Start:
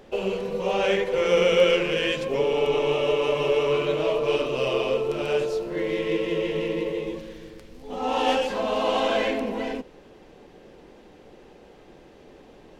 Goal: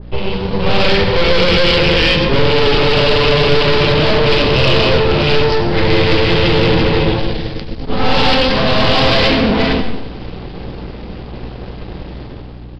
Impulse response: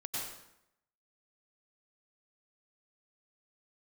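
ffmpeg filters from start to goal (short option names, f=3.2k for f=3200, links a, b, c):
-filter_complex "[0:a]bandreject=f=83.86:t=h:w=4,bandreject=f=167.72:t=h:w=4,bandreject=f=251.58:t=h:w=4,bandreject=f=335.44:t=h:w=4,bandreject=f=419.3:t=h:w=4,bandreject=f=503.16:t=h:w=4,aresample=16000,aeval=exprs='max(val(0),0)':c=same,aresample=44100,dynaudnorm=f=140:g=9:m=12dB,aeval=exprs='clip(val(0),-1,0.178)':c=same,bass=f=250:g=11,treble=f=4k:g=7,aeval=exprs='val(0)+0.01*(sin(2*PI*60*n/s)+sin(2*PI*2*60*n/s)/2+sin(2*PI*3*60*n/s)/3+sin(2*PI*4*60*n/s)/4+sin(2*PI*5*60*n/s)/5)':c=same,asplit=2[a][b];[1:a]atrim=start_sample=2205[c];[b][c]afir=irnorm=-1:irlink=0,volume=-9dB[d];[a][d]amix=inputs=2:normalize=0,aresample=11025,aresample=44100,acontrast=32,adynamicequalizer=threshold=0.0251:dfrequency=1900:dqfactor=0.7:tfrequency=1900:tqfactor=0.7:attack=5:release=100:ratio=0.375:range=2.5:mode=boostabove:tftype=highshelf,volume=1dB"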